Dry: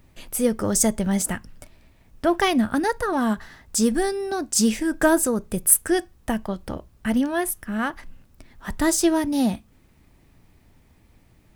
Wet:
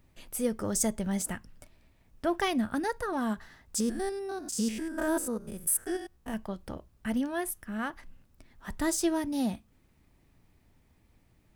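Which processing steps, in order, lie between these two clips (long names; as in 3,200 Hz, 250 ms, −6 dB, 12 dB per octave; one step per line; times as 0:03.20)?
0:03.80–0:06.34: spectrum averaged block by block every 100 ms
level −8.5 dB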